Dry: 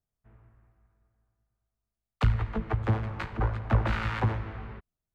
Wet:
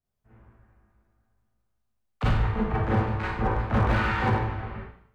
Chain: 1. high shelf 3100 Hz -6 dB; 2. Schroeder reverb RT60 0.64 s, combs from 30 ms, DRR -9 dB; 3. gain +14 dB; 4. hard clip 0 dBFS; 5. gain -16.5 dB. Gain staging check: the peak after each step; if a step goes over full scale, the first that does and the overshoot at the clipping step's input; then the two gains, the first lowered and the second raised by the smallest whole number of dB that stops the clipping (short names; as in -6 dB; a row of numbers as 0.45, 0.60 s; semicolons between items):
-11.5, -8.5, +5.5, 0.0, -16.5 dBFS; step 3, 5.5 dB; step 3 +8 dB, step 5 -10.5 dB